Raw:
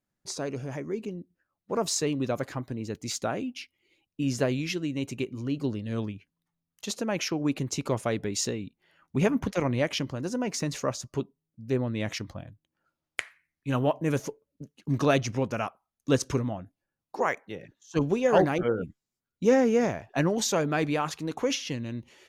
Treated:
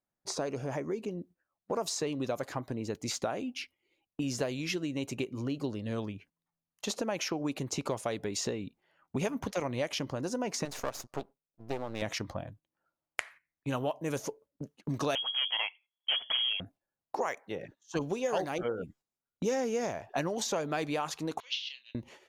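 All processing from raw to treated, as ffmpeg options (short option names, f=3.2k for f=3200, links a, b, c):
-filter_complex "[0:a]asettb=1/sr,asplit=3[a][b][c];[a]atrim=end=10.654[d];[b]atrim=start=10.65:end=12.02,asetpts=PTS-STARTPTS,afade=t=in:d=0.004:c=qsin,afade=t=out:st=1.366:d=0.004:c=qsin,lowshelf=f=340:g=-6.5,aeval=exprs='max(val(0),0)':c=same[e];[c]atrim=start=12.016[f];[d][e]acrossfade=d=0.004:c1=hsin:c2=qsin[g];[g][f]acrossfade=d=0.004:c1=qsin:c2=hsin,asettb=1/sr,asplit=3[h][i][j];[h]atrim=end=15.154[k];[i]atrim=start=15.15:end=16.6,asetpts=PTS-STARTPTS,afade=t=in:d=0.004:c=qsin,afade=t=out:st=1.446:d=0.004:c=qsin,lowshelf=f=160:g=10.5,volume=22.5dB,asoftclip=hard,volume=-22.5dB,lowpass=f=2.9k:t=q:w=0.5098,lowpass=f=2.9k:t=q:w=0.6013,lowpass=f=2.9k:t=q:w=0.9,lowpass=f=2.9k:t=q:w=2.563,afreqshift=-3400[l];[j]atrim=start=16.596[m];[k][l]acrossfade=d=0.004:c1=hsin:c2=qsin[n];[n][m]acrossfade=d=0.004:c1=qsin:c2=hsin,asettb=1/sr,asplit=3[o][p][q];[o]atrim=end=21.404[r];[p]atrim=start=21.4:end=21.95,asetpts=PTS-STARTPTS,afade=t=in:d=0.004:c=qsin,afade=t=out:st=0.546:d=0.004:c=qsin,asuperpass=centerf=3500:order=4:qfactor=2.1,asplit=2[s][t];[t]adelay=30,volume=-10dB[u];[s][u]amix=inputs=2:normalize=0,atrim=end_sample=24255[v];[q]atrim=start=21.946[w];[r][v]acrossfade=d=0.004:c1=hsin:c2=qsin[x];[x][w]acrossfade=d=0.004:c1=qsin:c2=hsin,agate=range=-10dB:threshold=-53dB:ratio=16:detection=peak,equalizer=f=750:w=0.66:g=8.5,acrossover=split=3200|7100[y][z][aa];[y]acompressor=threshold=-32dB:ratio=4[ab];[z]acompressor=threshold=-37dB:ratio=4[ac];[aa]acompressor=threshold=-45dB:ratio=4[ad];[ab][ac][ad]amix=inputs=3:normalize=0"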